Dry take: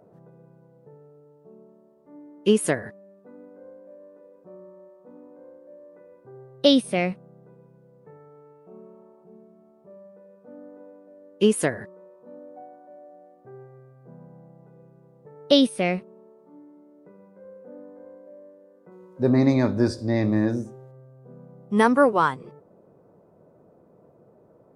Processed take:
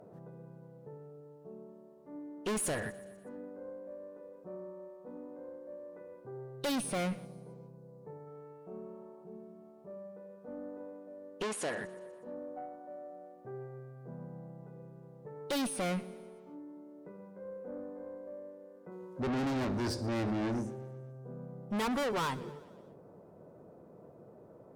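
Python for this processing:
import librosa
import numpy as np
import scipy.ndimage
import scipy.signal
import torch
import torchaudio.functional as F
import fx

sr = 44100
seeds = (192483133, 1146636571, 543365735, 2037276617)

p1 = fx.tube_stage(x, sr, drive_db=32.0, bias=0.2)
p2 = fx.bandpass_edges(p1, sr, low_hz=fx.line((11.42, 340.0), (11.83, 200.0)), high_hz=7400.0, at=(11.42, 11.83), fade=0.02)
p3 = p2 + fx.echo_feedback(p2, sr, ms=122, feedback_pct=60, wet_db=-20.0, dry=0)
p4 = fx.spec_box(p3, sr, start_s=7.25, length_s=1.02, low_hz=1200.0, high_hz=3800.0, gain_db=-8)
y = p4 * librosa.db_to_amplitude(1.0)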